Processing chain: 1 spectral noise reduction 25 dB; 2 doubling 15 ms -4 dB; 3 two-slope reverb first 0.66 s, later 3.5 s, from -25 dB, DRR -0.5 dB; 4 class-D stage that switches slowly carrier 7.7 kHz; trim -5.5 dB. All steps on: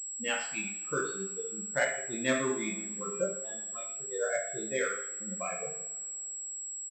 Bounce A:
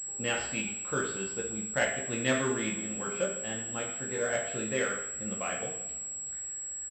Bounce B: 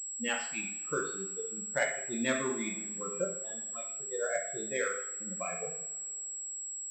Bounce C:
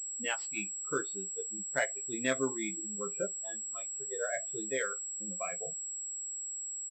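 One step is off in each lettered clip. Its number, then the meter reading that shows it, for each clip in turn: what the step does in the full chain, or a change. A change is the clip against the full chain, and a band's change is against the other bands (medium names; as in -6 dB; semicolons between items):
1, 125 Hz band +5.5 dB; 2, loudness change -1.0 LU; 3, momentary loudness spread change -2 LU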